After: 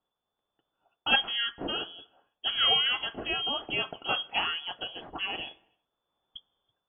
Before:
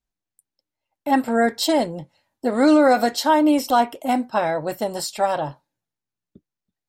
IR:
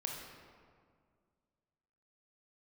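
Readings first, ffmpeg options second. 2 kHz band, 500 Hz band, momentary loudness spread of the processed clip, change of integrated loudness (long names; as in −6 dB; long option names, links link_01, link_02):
−2.5 dB, −20.5 dB, 14 LU, −8.5 dB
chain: -filter_complex "[0:a]aexciter=amount=8.8:drive=8.7:freq=2300,dynaudnorm=framelen=220:gausssize=5:maxgain=8dB,asplit=2[link_01][link_02];[link_02]tiltshelf=frequency=1500:gain=-9[link_03];[1:a]atrim=start_sample=2205,afade=type=out:start_time=0.39:duration=0.01,atrim=end_sample=17640[link_04];[link_03][link_04]afir=irnorm=-1:irlink=0,volume=-19.5dB[link_05];[link_01][link_05]amix=inputs=2:normalize=0,lowpass=frequency=3000:width_type=q:width=0.5098,lowpass=frequency=3000:width_type=q:width=0.6013,lowpass=frequency=3000:width_type=q:width=0.9,lowpass=frequency=3000:width_type=q:width=2.563,afreqshift=-3500,volume=-5dB"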